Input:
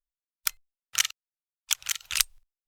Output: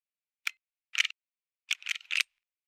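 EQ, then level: band-pass 2400 Hz, Q 3.5; +5.5 dB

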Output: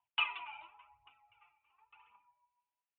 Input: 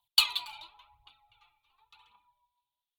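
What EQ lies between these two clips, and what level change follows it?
HPF 57 Hz; steep low-pass 2800 Hz 72 dB/oct; low shelf 320 Hz -9 dB; 0.0 dB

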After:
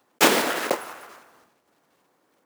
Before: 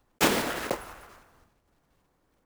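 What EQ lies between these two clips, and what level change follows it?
HPF 270 Hz 12 dB/oct; +6.5 dB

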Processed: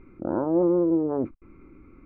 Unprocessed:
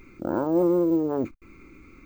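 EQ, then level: LPF 1200 Hz 12 dB/oct; 0.0 dB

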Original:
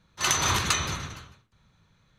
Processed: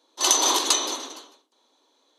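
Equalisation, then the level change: brick-wall FIR band-pass 250–13000 Hz; band shelf 1800 Hz -12.5 dB 1.3 oct; +6.5 dB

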